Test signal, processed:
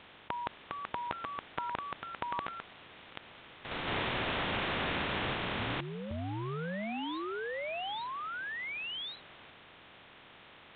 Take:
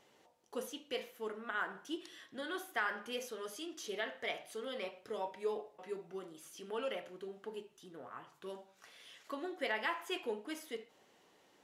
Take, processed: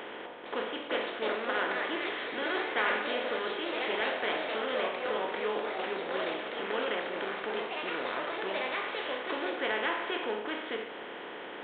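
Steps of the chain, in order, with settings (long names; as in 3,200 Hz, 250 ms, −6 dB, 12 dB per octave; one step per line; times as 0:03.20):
compressor on every frequency bin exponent 0.4
delay with pitch and tempo change per echo 455 ms, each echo +3 semitones, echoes 2
G.726 40 kbit/s 8,000 Hz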